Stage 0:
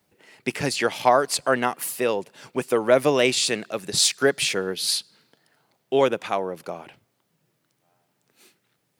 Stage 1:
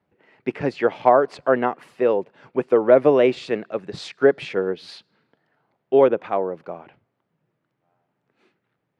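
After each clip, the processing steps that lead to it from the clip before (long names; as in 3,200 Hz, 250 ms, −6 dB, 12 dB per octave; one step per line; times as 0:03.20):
low-pass filter 1,900 Hz 12 dB per octave
dynamic equaliser 430 Hz, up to +7 dB, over −31 dBFS, Q 0.73
level −1.5 dB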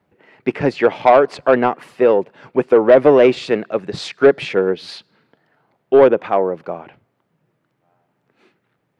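soft clipping −9 dBFS, distortion −15 dB
level +7 dB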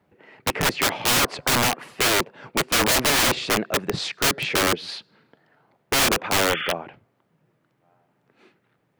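wrap-around overflow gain 14 dB
sound drawn into the spectrogram noise, 0:06.49–0:06.73, 1,200–3,500 Hz −29 dBFS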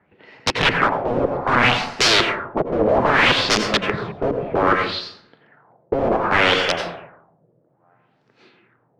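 dense smooth reverb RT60 0.71 s, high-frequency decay 0.5×, pre-delay 75 ms, DRR 4.5 dB
auto-filter low-pass sine 0.63 Hz 530–5,400 Hz
level +2 dB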